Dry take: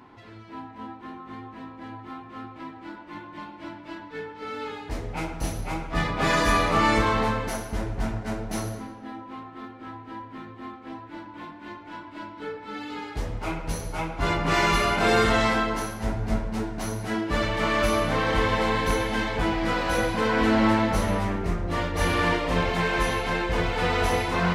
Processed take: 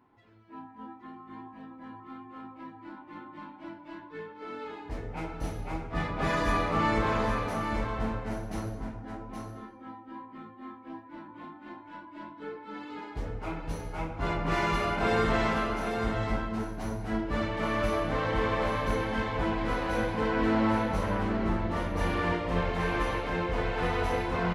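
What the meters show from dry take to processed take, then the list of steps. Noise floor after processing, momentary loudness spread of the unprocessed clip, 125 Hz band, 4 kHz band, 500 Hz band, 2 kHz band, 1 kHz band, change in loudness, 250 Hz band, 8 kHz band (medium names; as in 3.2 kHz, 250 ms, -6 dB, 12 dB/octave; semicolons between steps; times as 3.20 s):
-50 dBFS, 19 LU, -4.0 dB, -9.5 dB, -4.5 dB, -6.5 dB, -5.0 dB, -5.5 dB, -4.0 dB, -12.5 dB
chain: spectral noise reduction 9 dB; treble shelf 3.1 kHz -10 dB; delay 821 ms -6 dB; trim -5 dB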